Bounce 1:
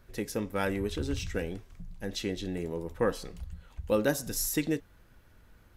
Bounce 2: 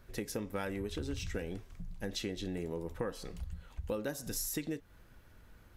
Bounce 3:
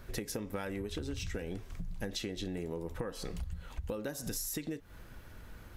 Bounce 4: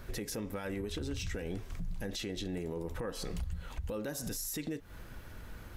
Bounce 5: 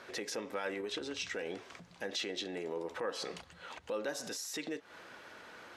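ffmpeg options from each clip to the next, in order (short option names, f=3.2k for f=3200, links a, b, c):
-af "acompressor=threshold=-34dB:ratio=6"
-af "acompressor=threshold=-43dB:ratio=6,volume=8dB"
-af "alimiter=level_in=8.5dB:limit=-24dB:level=0:latency=1:release=11,volume=-8.5dB,volume=3dB"
-af "highpass=450,lowpass=5.7k,volume=4.5dB"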